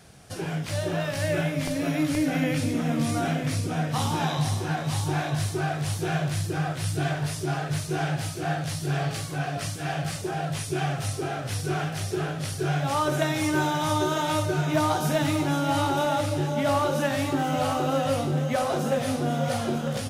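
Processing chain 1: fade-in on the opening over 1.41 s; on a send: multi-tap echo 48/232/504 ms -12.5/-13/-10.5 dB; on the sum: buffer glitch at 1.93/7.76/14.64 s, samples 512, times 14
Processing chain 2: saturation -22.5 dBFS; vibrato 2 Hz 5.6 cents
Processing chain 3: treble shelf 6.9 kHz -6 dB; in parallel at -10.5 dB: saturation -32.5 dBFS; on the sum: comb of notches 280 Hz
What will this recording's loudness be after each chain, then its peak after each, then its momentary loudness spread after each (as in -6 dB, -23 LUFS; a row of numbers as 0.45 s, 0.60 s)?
-25.5 LUFS, -29.0 LUFS, -27.5 LUFS; -12.0 dBFS, -22.5 dBFS, -14.0 dBFS; 5 LU, 4 LU, 4 LU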